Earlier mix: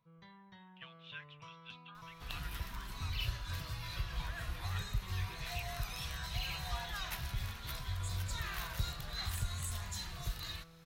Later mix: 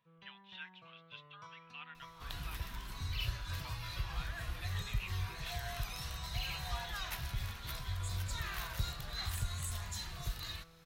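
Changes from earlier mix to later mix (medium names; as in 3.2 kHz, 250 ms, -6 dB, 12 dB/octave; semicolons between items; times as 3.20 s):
speech: entry -0.55 s; first sound: add bass shelf 160 Hz -9 dB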